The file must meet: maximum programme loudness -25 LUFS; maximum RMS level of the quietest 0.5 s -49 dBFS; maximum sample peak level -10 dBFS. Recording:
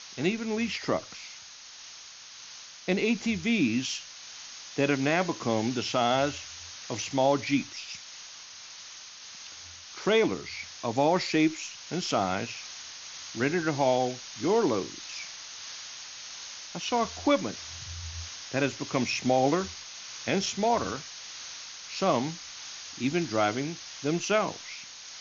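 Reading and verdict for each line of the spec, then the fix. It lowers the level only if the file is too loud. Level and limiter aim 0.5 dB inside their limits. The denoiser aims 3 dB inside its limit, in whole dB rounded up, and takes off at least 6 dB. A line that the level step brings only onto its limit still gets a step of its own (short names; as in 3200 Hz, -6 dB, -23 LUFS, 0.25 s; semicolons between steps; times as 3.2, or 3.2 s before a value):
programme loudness -29.5 LUFS: OK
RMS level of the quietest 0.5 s -47 dBFS: fail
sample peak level -12.0 dBFS: OK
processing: denoiser 6 dB, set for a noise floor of -47 dBFS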